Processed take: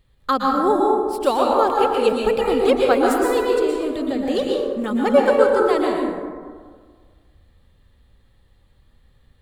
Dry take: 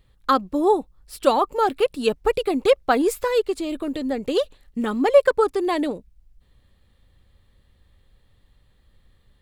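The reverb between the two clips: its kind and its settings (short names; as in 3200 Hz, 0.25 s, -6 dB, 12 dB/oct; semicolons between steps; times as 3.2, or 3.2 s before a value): plate-style reverb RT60 1.7 s, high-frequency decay 0.4×, pre-delay 0.105 s, DRR -2 dB; gain -1.5 dB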